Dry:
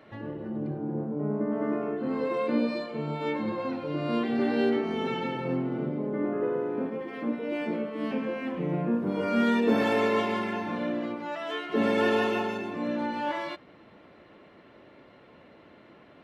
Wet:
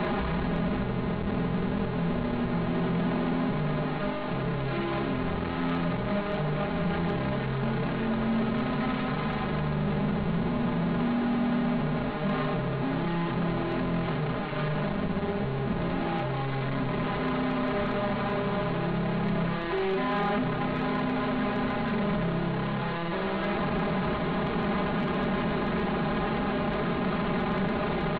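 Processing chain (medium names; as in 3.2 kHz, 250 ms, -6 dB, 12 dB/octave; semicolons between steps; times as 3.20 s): one-bit comparator; treble shelf 2.7 kHz -3 dB; comb 2.8 ms, depth 84%; resampled via 16 kHz; in parallel at -11.5 dB: bit crusher 4-bit; on the sum: distance through air 65 m; on a send: delay 202 ms -13 dB; on the sum: wide varispeed 0.576×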